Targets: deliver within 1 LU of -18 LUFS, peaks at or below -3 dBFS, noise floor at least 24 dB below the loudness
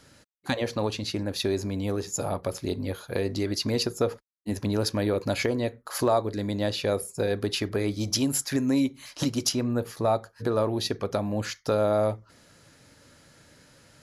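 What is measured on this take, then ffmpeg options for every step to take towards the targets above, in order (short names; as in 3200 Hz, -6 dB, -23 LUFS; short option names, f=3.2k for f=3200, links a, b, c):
loudness -28.0 LUFS; peak -10.5 dBFS; loudness target -18.0 LUFS
-> -af "volume=10dB,alimiter=limit=-3dB:level=0:latency=1"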